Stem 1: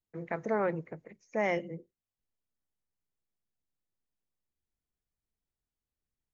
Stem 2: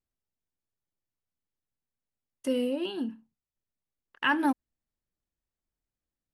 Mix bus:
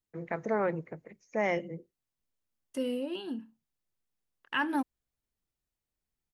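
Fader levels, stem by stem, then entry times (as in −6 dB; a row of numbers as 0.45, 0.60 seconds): +0.5, −4.5 decibels; 0.00, 0.30 seconds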